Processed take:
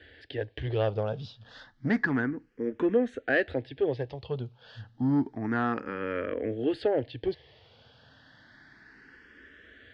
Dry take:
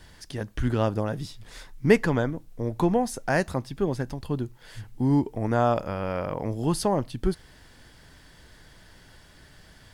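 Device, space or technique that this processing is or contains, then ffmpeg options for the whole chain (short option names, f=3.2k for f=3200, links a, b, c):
barber-pole phaser into a guitar amplifier: -filter_complex "[0:a]asplit=2[a][b];[b]afreqshift=0.3[c];[a][c]amix=inputs=2:normalize=1,asoftclip=type=tanh:threshold=-18.5dB,highpass=93,equalizer=f=170:t=q:w=4:g=-10,equalizer=f=270:t=q:w=4:g=4,equalizer=f=460:t=q:w=4:g=6,equalizer=f=1k:t=q:w=4:g=-6,equalizer=f=1.7k:t=q:w=4:g=8,equalizer=f=3.1k:t=q:w=4:g=3,lowpass=f=4.1k:w=0.5412,lowpass=f=4.1k:w=1.3066"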